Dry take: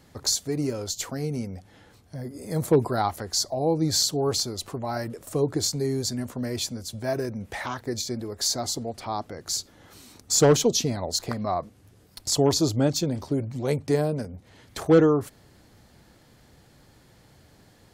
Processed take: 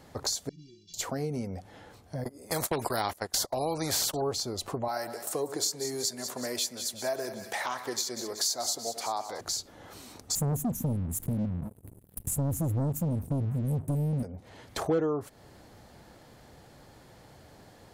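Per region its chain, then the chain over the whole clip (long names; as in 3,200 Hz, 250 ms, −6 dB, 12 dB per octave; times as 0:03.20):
0:00.49–0:00.94: variable-slope delta modulation 32 kbit/s + inverse Chebyshev band-stop filter 550–1,600 Hz, stop band 50 dB + stiff-string resonator 170 Hz, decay 0.46 s, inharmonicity 0.03
0:02.24–0:04.22: noise gate −33 dBFS, range −28 dB + high-shelf EQ 5,200 Hz +5.5 dB + every bin compressed towards the loudest bin 2 to 1
0:04.88–0:09.41: high-pass filter 660 Hz 6 dB per octave + high-shelf EQ 4,400 Hz +9 dB + echo with a time of its own for lows and highs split 1,600 Hz, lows 95 ms, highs 187 ms, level −12.5 dB
0:10.35–0:14.23: inverse Chebyshev band-stop filter 550–4,700 Hz, stop band 50 dB + leveller curve on the samples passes 3
whole clip: parametric band 710 Hz +6.5 dB 1.7 octaves; downward compressor 2.5 to 1, threshold −31 dBFS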